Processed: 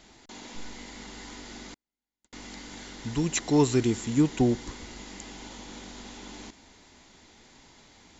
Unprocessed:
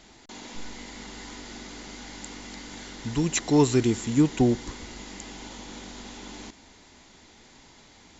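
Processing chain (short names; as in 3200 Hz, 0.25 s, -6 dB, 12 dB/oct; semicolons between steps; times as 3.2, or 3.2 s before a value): 1.74–2.33 gate -34 dBFS, range -51 dB; gain -2 dB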